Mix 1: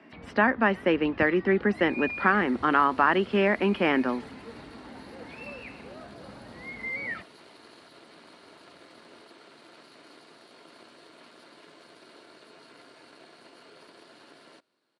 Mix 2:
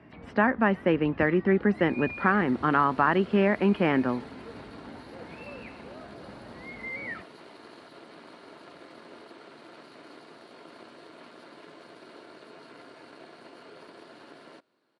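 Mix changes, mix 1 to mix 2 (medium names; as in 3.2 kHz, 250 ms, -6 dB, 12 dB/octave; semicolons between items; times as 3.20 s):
speech: remove high-pass 200 Hz 24 dB/octave; second sound +5.0 dB; master: add treble shelf 2.7 kHz -9 dB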